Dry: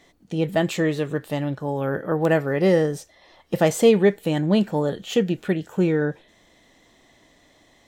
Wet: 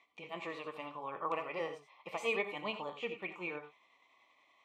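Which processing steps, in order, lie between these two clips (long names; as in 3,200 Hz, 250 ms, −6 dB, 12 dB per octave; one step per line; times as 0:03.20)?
pair of resonant band-passes 1,600 Hz, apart 1.1 octaves
time stretch by overlap-add 0.59×, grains 192 ms
reverb whose tail is shaped and stops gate 110 ms rising, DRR 8.5 dB
level +1.5 dB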